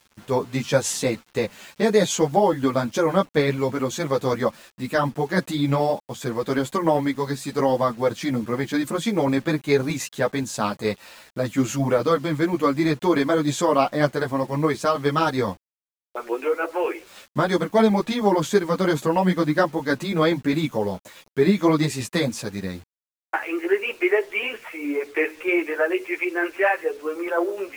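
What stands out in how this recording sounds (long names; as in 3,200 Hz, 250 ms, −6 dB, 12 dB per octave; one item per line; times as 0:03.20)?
tremolo saw down 9.5 Hz, depth 30%
a quantiser's noise floor 8 bits, dither none
a shimmering, thickened sound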